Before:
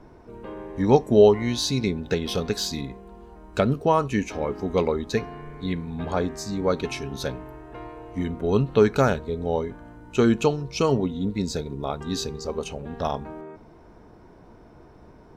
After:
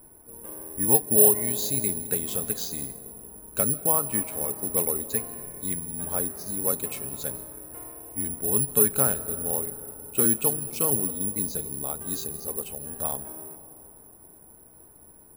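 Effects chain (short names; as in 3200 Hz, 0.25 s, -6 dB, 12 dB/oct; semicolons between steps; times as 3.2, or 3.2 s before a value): digital reverb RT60 4.1 s, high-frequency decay 0.25×, pre-delay 0.115 s, DRR 15 dB; careless resampling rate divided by 4×, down filtered, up zero stuff; gain -9 dB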